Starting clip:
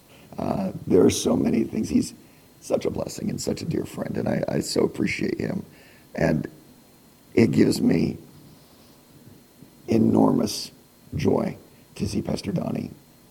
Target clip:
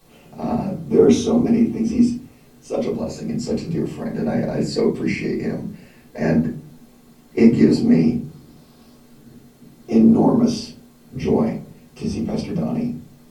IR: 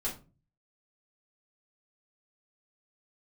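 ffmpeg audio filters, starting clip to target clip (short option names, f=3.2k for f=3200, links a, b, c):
-filter_complex "[0:a]acrossover=split=7500[a][b];[b]acompressor=threshold=-58dB:ratio=4:attack=1:release=60[c];[a][c]amix=inputs=2:normalize=0[d];[1:a]atrim=start_sample=2205[e];[d][e]afir=irnorm=-1:irlink=0,volume=-2dB"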